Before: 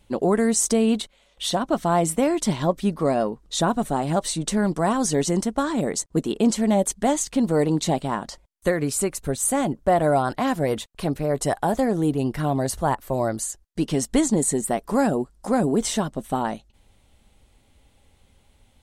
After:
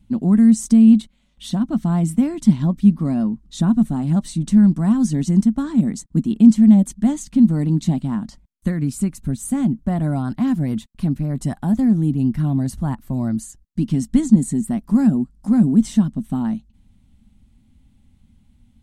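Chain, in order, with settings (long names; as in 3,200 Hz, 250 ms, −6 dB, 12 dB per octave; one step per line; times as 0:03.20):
low shelf with overshoot 320 Hz +12 dB, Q 3
level −8 dB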